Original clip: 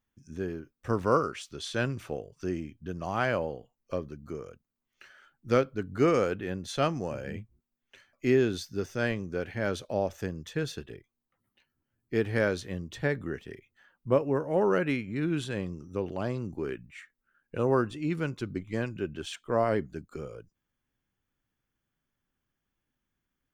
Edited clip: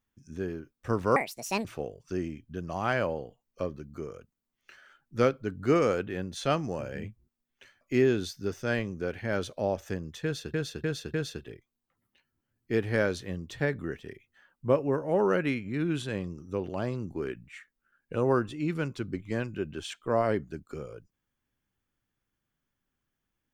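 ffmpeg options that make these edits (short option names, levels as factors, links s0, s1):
-filter_complex "[0:a]asplit=6[s0][s1][s2][s3][s4][s5];[s0]atrim=end=1.164[s6];[s1]atrim=start=1.16:end=1.97,asetpts=PTS-STARTPTS,asetrate=73206,aresample=44100[s7];[s2]atrim=start=1.966:end=10.862[s8];[s3]atrim=start=10.558:end=10.862[s9];[s4]atrim=start=10.558:end=10.862[s10];[s5]atrim=start=10.558[s11];[s6][s7]acrossfade=d=0.004:c1=hsin:c2=hsin[s12];[s12][s8]acrossfade=d=0.004:c1=hsin:c2=hsin[s13];[s13][s9]acrossfade=d=0.004:c1=hsin:c2=hsin[s14];[s14][s10]acrossfade=d=0.004:c1=hsin:c2=hsin[s15];[s15][s11]acrossfade=d=0.004:c1=hsin:c2=hsin"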